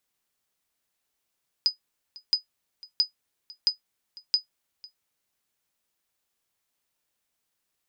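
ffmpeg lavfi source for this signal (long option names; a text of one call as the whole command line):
ffmpeg -f lavfi -i "aevalsrc='0.237*(sin(2*PI*4980*mod(t,0.67))*exp(-6.91*mod(t,0.67)/0.12)+0.075*sin(2*PI*4980*max(mod(t,0.67)-0.5,0))*exp(-6.91*max(mod(t,0.67)-0.5,0)/0.12))':duration=3.35:sample_rate=44100" out.wav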